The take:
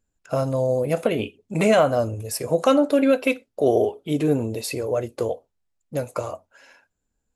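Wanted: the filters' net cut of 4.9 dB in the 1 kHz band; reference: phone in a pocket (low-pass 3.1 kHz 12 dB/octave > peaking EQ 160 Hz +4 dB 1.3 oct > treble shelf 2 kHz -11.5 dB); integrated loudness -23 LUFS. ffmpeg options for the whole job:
-af "lowpass=3100,equalizer=f=160:t=o:w=1.3:g=4,equalizer=f=1000:t=o:g=-5,highshelf=f=2000:g=-11.5"

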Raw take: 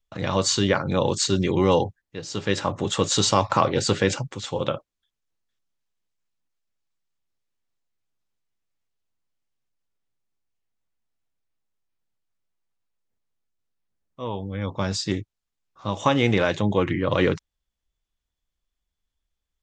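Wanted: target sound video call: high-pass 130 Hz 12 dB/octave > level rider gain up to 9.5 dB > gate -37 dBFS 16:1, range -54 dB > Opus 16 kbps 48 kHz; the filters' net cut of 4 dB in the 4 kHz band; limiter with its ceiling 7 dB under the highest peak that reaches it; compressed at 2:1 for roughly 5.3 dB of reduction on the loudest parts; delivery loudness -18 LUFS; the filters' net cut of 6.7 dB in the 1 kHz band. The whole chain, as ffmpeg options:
-af "equalizer=f=1000:t=o:g=-8,equalizer=f=4000:t=o:g=-4.5,acompressor=threshold=0.0501:ratio=2,alimiter=limit=0.119:level=0:latency=1,highpass=130,dynaudnorm=m=2.99,agate=range=0.002:threshold=0.0141:ratio=16,volume=4.73" -ar 48000 -c:a libopus -b:a 16k

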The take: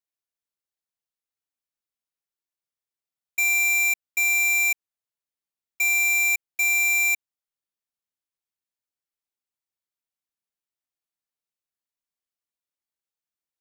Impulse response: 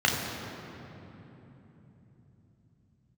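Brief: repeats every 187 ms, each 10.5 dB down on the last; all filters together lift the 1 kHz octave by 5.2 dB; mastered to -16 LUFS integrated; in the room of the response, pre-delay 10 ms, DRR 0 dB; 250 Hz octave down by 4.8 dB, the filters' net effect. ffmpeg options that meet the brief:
-filter_complex "[0:a]equalizer=f=250:t=o:g=-8,equalizer=f=1000:t=o:g=8.5,aecho=1:1:187|374|561:0.299|0.0896|0.0269,asplit=2[s0][s1];[1:a]atrim=start_sample=2205,adelay=10[s2];[s1][s2]afir=irnorm=-1:irlink=0,volume=0.168[s3];[s0][s3]amix=inputs=2:normalize=0,volume=1.06"

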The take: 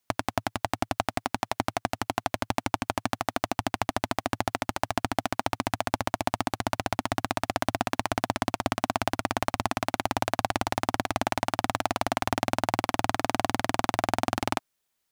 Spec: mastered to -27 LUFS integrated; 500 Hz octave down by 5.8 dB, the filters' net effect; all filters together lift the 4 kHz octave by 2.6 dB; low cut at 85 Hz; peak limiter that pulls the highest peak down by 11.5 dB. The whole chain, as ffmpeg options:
-af "highpass=85,equalizer=f=500:t=o:g=-9,equalizer=f=4000:t=o:g=3.5,volume=4.47,alimiter=limit=0.75:level=0:latency=1"

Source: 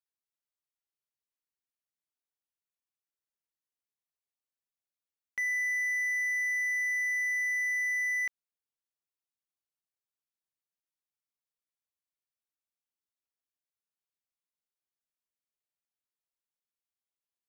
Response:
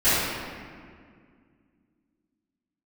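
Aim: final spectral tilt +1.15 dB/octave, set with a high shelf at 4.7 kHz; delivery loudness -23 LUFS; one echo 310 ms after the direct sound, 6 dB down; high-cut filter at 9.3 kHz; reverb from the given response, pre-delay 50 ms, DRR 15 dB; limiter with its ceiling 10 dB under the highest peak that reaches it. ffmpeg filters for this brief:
-filter_complex "[0:a]lowpass=9300,highshelf=f=4700:g=3.5,alimiter=level_in=3.76:limit=0.0631:level=0:latency=1,volume=0.266,aecho=1:1:310:0.501,asplit=2[s0][s1];[1:a]atrim=start_sample=2205,adelay=50[s2];[s1][s2]afir=irnorm=-1:irlink=0,volume=0.0188[s3];[s0][s3]amix=inputs=2:normalize=0,volume=4.22"

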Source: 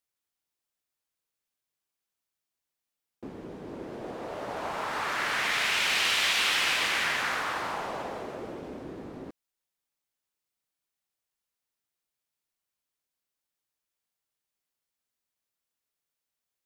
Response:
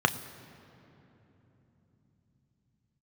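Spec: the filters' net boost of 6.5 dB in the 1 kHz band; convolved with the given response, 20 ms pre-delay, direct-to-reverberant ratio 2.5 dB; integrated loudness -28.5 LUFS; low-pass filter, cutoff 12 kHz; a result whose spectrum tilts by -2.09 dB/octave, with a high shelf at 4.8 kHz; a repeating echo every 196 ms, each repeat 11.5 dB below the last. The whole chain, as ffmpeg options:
-filter_complex "[0:a]lowpass=12000,equalizer=f=1000:t=o:g=8.5,highshelf=f=4800:g=-7.5,aecho=1:1:196|392|588:0.266|0.0718|0.0194,asplit=2[s0][s1];[1:a]atrim=start_sample=2205,adelay=20[s2];[s1][s2]afir=irnorm=-1:irlink=0,volume=0.158[s3];[s0][s3]amix=inputs=2:normalize=0,volume=0.596"

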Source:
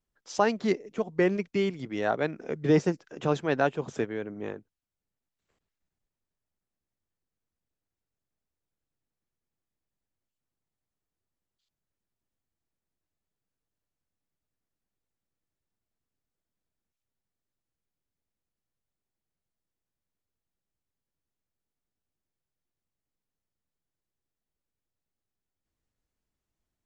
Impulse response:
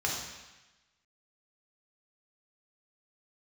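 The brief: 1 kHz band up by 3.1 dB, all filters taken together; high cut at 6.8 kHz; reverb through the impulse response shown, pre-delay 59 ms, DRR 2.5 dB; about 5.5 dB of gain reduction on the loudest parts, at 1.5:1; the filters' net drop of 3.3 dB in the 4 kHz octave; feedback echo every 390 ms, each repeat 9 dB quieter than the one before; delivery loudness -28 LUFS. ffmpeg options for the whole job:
-filter_complex "[0:a]lowpass=6800,equalizer=f=1000:t=o:g=4.5,equalizer=f=4000:t=o:g=-4.5,acompressor=threshold=0.0251:ratio=1.5,aecho=1:1:390|780|1170|1560:0.355|0.124|0.0435|0.0152,asplit=2[s0][s1];[1:a]atrim=start_sample=2205,adelay=59[s2];[s1][s2]afir=irnorm=-1:irlink=0,volume=0.299[s3];[s0][s3]amix=inputs=2:normalize=0,volume=1.26"

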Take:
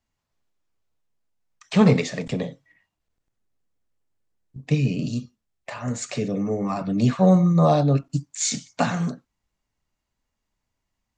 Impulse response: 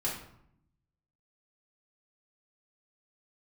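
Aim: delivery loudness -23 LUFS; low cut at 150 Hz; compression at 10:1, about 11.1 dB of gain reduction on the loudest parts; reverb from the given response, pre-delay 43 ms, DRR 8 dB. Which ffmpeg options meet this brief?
-filter_complex "[0:a]highpass=150,acompressor=threshold=0.0708:ratio=10,asplit=2[s0][s1];[1:a]atrim=start_sample=2205,adelay=43[s2];[s1][s2]afir=irnorm=-1:irlink=0,volume=0.224[s3];[s0][s3]amix=inputs=2:normalize=0,volume=1.88"

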